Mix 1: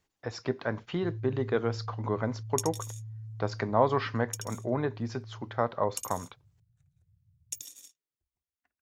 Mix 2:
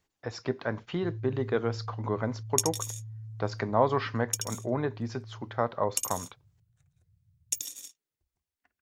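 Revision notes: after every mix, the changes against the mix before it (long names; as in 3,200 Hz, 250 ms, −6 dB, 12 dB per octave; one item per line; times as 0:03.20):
second sound +7.0 dB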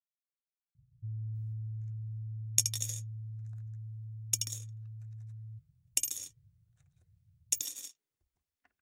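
speech: muted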